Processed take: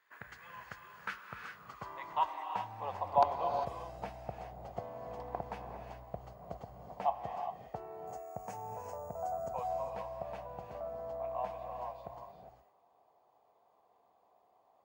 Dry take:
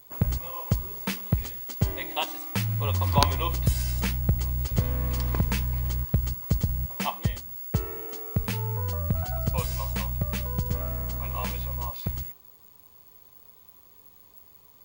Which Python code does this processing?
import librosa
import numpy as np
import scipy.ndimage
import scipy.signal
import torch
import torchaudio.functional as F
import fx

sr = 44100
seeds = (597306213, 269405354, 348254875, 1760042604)

y = fx.filter_sweep_bandpass(x, sr, from_hz=1700.0, to_hz=720.0, start_s=0.58, end_s=3.09, q=5.7)
y = fx.high_shelf_res(y, sr, hz=5100.0, db=11.0, q=3.0, at=(8.07, 9.49))
y = fx.rev_gated(y, sr, seeds[0], gate_ms=430, shape='rising', drr_db=4.0)
y = F.gain(torch.from_numpy(y), 5.0).numpy()